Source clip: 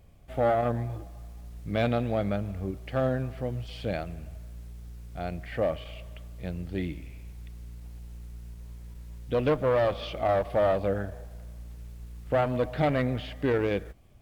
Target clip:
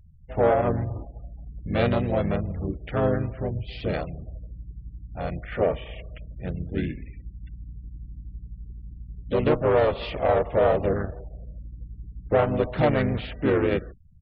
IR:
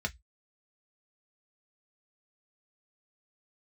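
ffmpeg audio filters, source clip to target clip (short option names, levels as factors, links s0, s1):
-filter_complex "[0:a]asplit=3[s0][s1][s2];[s1]asetrate=35002,aresample=44100,atempo=1.25992,volume=0.794[s3];[s2]asetrate=52444,aresample=44100,atempo=0.840896,volume=0.282[s4];[s0][s3][s4]amix=inputs=3:normalize=0,afftfilt=real='re*gte(hypot(re,im),0.00562)':imag='im*gte(hypot(re,im),0.00562)':win_size=1024:overlap=0.75,volume=1.19"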